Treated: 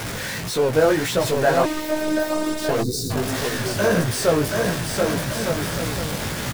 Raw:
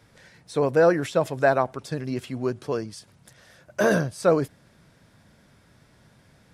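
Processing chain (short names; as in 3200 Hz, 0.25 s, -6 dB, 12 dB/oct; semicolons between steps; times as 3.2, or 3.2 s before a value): zero-crossing step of -22 dBFS; on a send: bouncing-ball echo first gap 0.73 s, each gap 0.65×, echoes 5; 2.82–3.1 on the sum: spectral gain 510–3600 Hz -27 dB; chorus 1.7 Hz, delay 16 ms, depth 4.3 ms; 1.65–2.69 robotiser 308 Hz; 1.54–2.53 spectral repair 2000–11000 Hz both; gain +2 dB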